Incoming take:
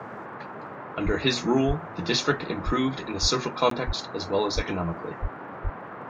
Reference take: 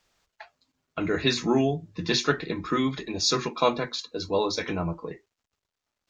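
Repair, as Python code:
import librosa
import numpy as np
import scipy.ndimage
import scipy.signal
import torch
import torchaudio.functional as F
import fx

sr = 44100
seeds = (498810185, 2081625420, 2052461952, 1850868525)

y = fx.fix_declick_ar(x, sr, threshold=6.5)
y = fx.fix_deplosive(y, sr, at_s=(1.05, 1.67, 2.65, 3.21, 3.86, 4.55, 5.21, 5.63))
y = fx.fix_interpolate(y, sr, at_s=(3.7,), length_ms=13.0)
y = fx.noise_reduce(y, sr, print_start_s=0.46, print_end_s=0.96, reduce_db=30.0)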